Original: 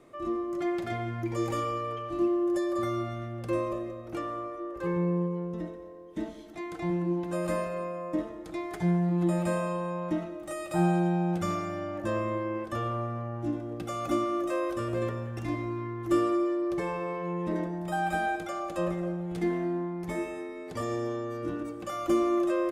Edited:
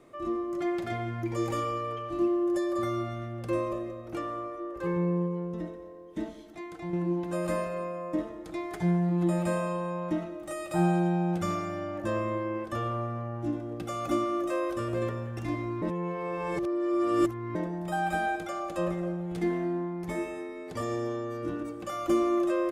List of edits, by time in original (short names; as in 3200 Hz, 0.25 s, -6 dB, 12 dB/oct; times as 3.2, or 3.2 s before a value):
6.21–6.93 fade out, to -6.5 dB
15.82–17.55 reverse